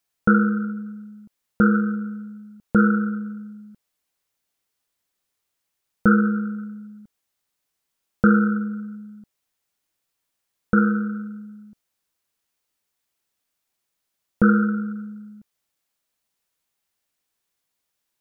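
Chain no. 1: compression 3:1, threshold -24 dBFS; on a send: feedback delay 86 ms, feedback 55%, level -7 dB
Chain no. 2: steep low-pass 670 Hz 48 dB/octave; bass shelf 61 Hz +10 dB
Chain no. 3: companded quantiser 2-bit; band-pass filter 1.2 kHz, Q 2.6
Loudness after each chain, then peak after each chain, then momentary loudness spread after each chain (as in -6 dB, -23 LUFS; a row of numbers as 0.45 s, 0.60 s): -25.5 LUFS, -21.5 LUFS, -20.5 LUFS; -9.5 dBFS, -5.0 dBFS, -4.0 dBFS; 17 LU, 19 LU, 16 LU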